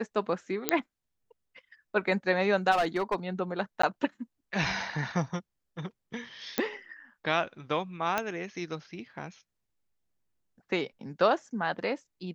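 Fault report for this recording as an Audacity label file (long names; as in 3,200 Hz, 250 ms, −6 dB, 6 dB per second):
0.690000	0.690000	click −6 dBFS
2.710000	3.150000	clipping −22 dBFS
3.820000	3.830000	drop-out 14 ms
6.580000	6.580000	click −11 dBFS
8.180000	8.180000	click −13 dBFS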